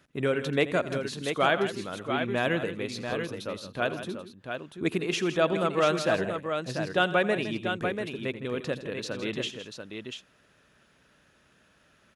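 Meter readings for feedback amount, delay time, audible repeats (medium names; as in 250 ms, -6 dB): no regular repeats, 84 ms, 3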